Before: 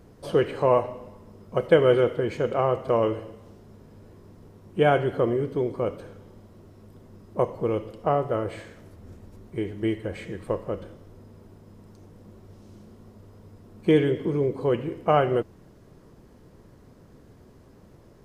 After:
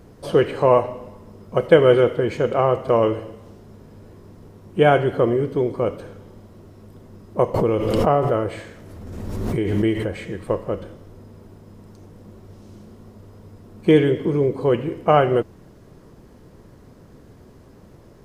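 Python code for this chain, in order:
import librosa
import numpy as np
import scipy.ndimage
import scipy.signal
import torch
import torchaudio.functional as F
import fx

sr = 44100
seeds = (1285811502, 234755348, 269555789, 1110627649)

y = fx.pre_swell(x, sr, db_per_s=28.0, at=(7.54, 10.14))
y = y * 10.0 ** (5.0 / 20.0)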